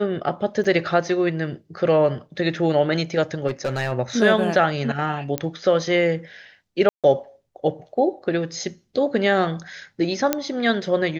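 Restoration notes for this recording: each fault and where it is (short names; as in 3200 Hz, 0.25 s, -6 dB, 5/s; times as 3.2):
0.64–0.65 gap 5.8 ms
3.47–3.93 clipped -19.5 dBFS
5.38 pop -9 dBFS
6.89–7.04 gap 0.147 s
10.33 pop -4 dBFS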